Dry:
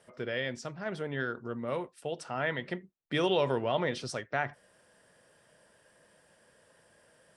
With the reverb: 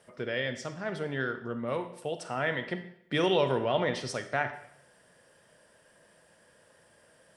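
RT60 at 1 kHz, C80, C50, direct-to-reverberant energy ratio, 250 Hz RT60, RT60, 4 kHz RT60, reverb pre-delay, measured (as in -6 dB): 0.75 s, 13.0 dB, 10.5 dB, 9.0 dB, 0.70 s, 0.75 s, 0.70 s, 26 ms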